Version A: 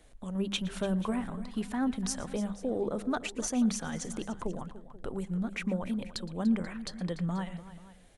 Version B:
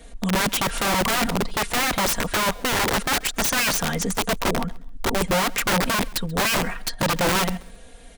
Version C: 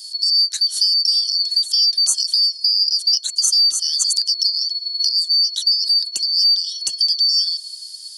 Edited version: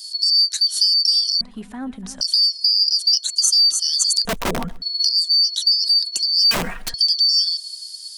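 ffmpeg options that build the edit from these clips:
-filter_complex "[1:a]asplit=2[a][b];[2:a]asplit=4[c][d][e][f];[c]atrim=end=1.412[g];[0:a]atrim=start=1.408:end=2.212[h];[d]atrim=start=2.208:end=4.252[i];[a]atrim=start=4.248:end=4.822[j];[e]atrim=start=4.818:end=6.512[k];[b]atrim=start=6.508:end=6.942[l];[f]atrim=start=6.938[m];[g][h]acrossfade=d=0.004:c1=hsin:c2=hsin[n];[n][i]acrossfade=d=0.004:c1=hsin:c2=hsin[o];[o][j]acrossfade=d=0.004:c1=hsin:c2=hsin[p];[p][k]acrossfade=d=0.004:c1=hsin:c2=hsin[q];[q][l]acrossfade=d=0.004:c1=hsin:c2=hsin[r];[r][m]acrossfade=d=0.004:c1=hsin:c2=hsin"

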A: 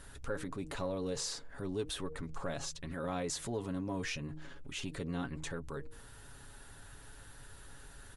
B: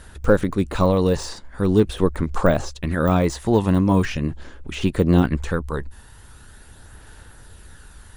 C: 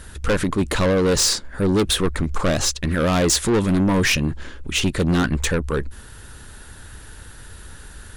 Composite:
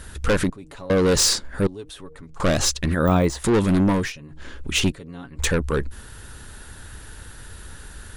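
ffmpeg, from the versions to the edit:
-filter_complex "[0:a]asplit=4[a][b][c][d];[2:a]asplit=6[e][f][g][h][i][j];[e]atrim=end=0.502[k];[a]atrim=start=0.498:end=0.902[l];[f]atrim=start=0.898:end=1.672[m];[b]atrim=start=1.668:end=2.402[n];[g]atrim=start=2.398:end=2.942[o];[1:a]atrim=start=2.938:end=3.442[p];[h]atrim=start=3.438:end=4.13[q];[c]atrim=start=3.89:end=4.54[r];[i]atrim=start=4.3:end=4.922[s];[d]atrim=start=4.918:end=5.392[t];[j]atrim=start=5.388[u];[k][l]acrossfade=d=0.004:c1=hsin:c2=hsin[v];[v][m]acrossfade=d=0.004:c1=hsin:c2=hsin[w];[w][n]acrossfade=d=0.004:c1=hsin:c2=hsin[x];[x][o]acrossfade=d=0.004:c1=hsin:c2=hsin[y];[y][p]acrossfade=d=0.004:c1=hsin:c2=hsin[z];[z][q]acrossfade=d=0.004:c1=hsin:c2=hsin[aa];[aa][r]acrossfade=d=0.24:c1=tri:c2=tri[ab];[ab][s]acrossfade=d=0.24:c1=tri:c2=tri[ac];[ac][t]acrossfade=d=0.004:c1=hsin:c2=hsin[ad];[ad][u]acrossfade=d=0.004:c1=hsin:c2=hsin"

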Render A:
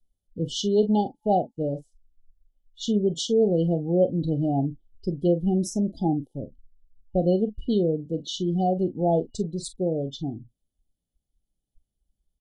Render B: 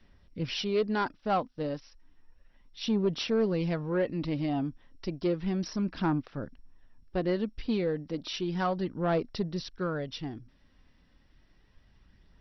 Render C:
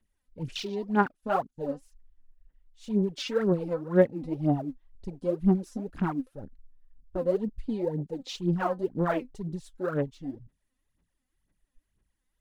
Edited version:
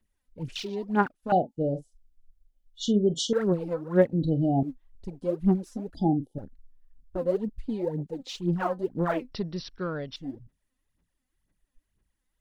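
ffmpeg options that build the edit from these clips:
-filter_complex "[0:a]asplit=3[a][b][c];[2:a]asplit=5[d][e][f][g][h];[d]atrim=end=1.322[i];[a]atrim=start=1.318:end=3.332[j];[e]atrim=start=3.328:end=4.132[k];[b]atrim=start=4.128:end=4.632[l];[f]atrim=start=4.628:end=5.952[m];[c]atrim=start=5.948:end=6.382[n];[g]atrim=start=6.378:end=9.322[o];[1:a]atrim=start=9.318:end=10.162[p];[h]atrim=start=10.158[q];[i][j]acrossfade=d=0.004:c1=hsin:c2=hsin[r];[r][k]acrossfade=d=0.004:c1=hsin:c2=hsin[s];[s][l]acrossfade=d=0.004:c1=hsin:c2=hsin[t];[t][m]acrossfade=d=0.004:c1=hsin:c2=hsin[u];[u][n]acrossfade=d=0.004:c1=hsin:c2=hsin[v];[v][o]acrossfade=d=0.004:c1=hsin:c2=hsin[w];[w][p]acrossfade=d=0.004:c1=hsin:c2=hsin[x];[x][q]acrossfade=d=0.004:c1=hsin:c2=hsin"

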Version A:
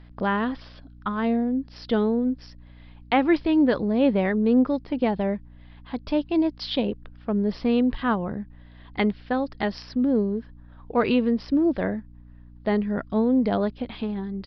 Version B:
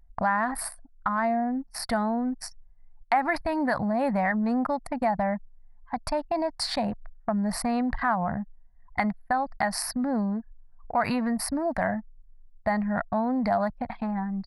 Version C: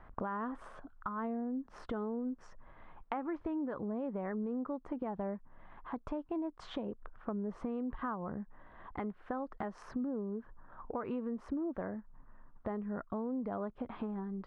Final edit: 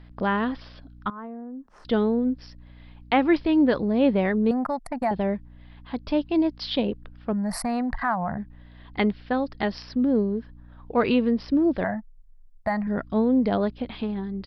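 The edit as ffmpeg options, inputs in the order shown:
-filter_complex "[1:a]asplit=3[a][b][c];[0:a]asplit=5[d][e][f][g][h];[d]atrim=end=1.102[i];[2:a]atrim=start=1.098:end=1.852[j];[e]atrim=start=1.848:end=4.512[k];[a]atrim=start=4.508:end=5.112[l];[f]atrim=start=5.108:end=7.332[m];[b]atrim=start=7.328:end=8.382[n];[g]atrim=start=8.378:end=11.842[o];[c]atrim=start=11.838:end=12.872[p];[h]atrim=start=12.868[q];[i][j]acrossfade=d=0.004:c1=hsin:c2=hsin[r];[r][k]acrossfade=d=0.004:c1=hsin:c2=hsin[s];[s][l]acrossfade=d=0.004:c1=hsin:c2=hsin[t];[t][m]acrossfade=d=0.004:c1=hsin:c2=hsin[u];[u][n]acrossfade=d=0.004:c1=hsin:c2=hsin[v];[v][o]acrossfade=d=0.004:c1=hsin:c2=hsin[w];[w][p]acrossfade=d=0.004:c1=hsin:c2=hsin[x];[x][q]acrossfade=d=0.004:c1=hsin:c2=hsin"

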